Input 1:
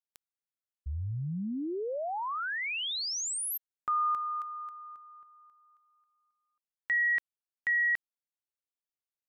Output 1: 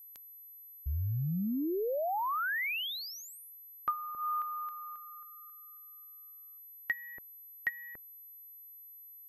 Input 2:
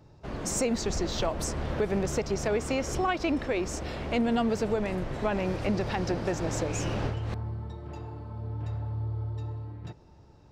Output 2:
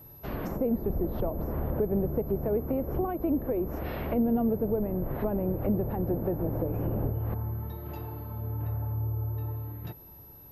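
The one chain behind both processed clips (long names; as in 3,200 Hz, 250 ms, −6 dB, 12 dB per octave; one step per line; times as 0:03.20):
treble cut that deepens with the level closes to 540 Hz, closed at −26 dBFS
steady tone 12,000 Hz −51 dBFS
level +1.5 dB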